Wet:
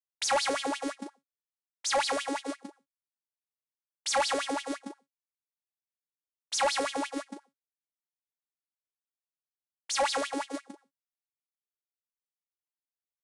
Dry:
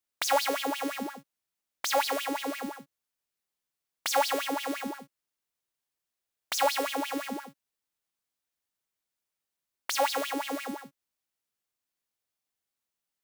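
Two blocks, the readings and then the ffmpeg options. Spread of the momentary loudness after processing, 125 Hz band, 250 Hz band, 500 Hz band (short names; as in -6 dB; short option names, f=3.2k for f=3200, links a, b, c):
16 LU, n/a, -2.0 dB, -1.0 dB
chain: -filter_complex "[0:a]agate=range=-27dB:threshold=-32dB:ratio=16:detection=peak,equalizer=f=2.7k:w=2.3:g=-4.5,acrossover=split=210[a][b];[a]acrusher=bits=4:mix=0:aa=0.000001[c];[c][b]amix=inputs=2:normalize=0,asoftclip=type=tanh:threshold=-25dB,adynamicequalizer=threshold=0.00708:dfrequency=660:dqfactor=0.77:tfrequency=660:tqfactor=0.77:attack=5:release=100:ratio=0.375:range=2.5:mode=cutabove:tftype=bell,aresample=22050,aresample=44100,volume=4dB"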